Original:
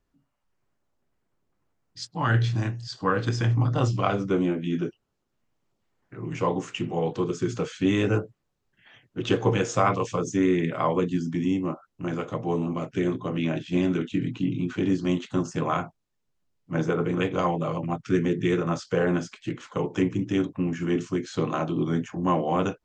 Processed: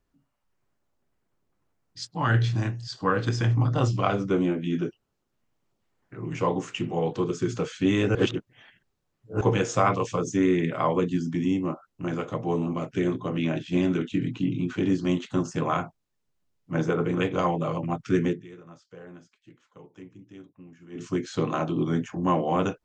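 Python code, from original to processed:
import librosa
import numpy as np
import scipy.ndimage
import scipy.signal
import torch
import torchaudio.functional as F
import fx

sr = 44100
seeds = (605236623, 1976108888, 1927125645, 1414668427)

y = fx.edit(x, sr, fx.reverse_span(start_s=8.15, length_s=1.26),
    fx.fade_down_up(start_s=18.29, length_s=2.77, db=-21.5, fade_s=0.17, curve='qua'), tone=tone)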